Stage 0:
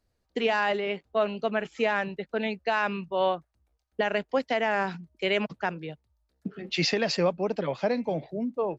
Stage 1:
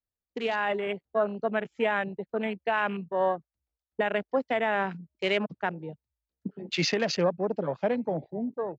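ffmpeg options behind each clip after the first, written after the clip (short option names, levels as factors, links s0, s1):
-af "afwtdn=0.0178,dynaudnorm=f=400:g=3:m=1.78,volume=0.531"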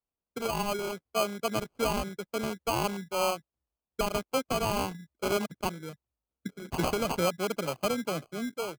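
-af "acrusher=samples=24:mix=1:aa=0.000001,volume=0.75"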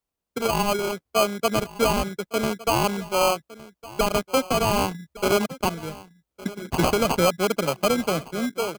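-af "aeval=exprs='0.15*(cos(1*acos(clip(val(0)/0.15,-1,1)))-cos(1*PI/2))+0.0237*(cos(5*acos(clip(val(0)/0.15,-1,1)))-cos(5*PI/2))+0.0168*(cos(7*acos(clip(val(0)/0.15,-1,1)))-cos(7*PI/2))':c=same,aecho=1:1:1161:0.112,volume=2.11"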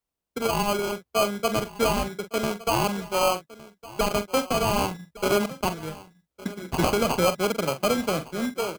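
-filter_complex "[0:a]acrusher=bits=4:mode=log:mix=0:aa=0.000001,asplit=2[s0][s1];[s1]adelay=44,volume=0.282[s2];[s0][s2]amix=inputs=2:normalize=0,volume=0.794"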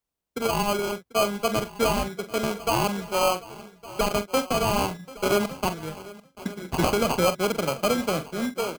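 -af "aecho=1:1:741:0.1"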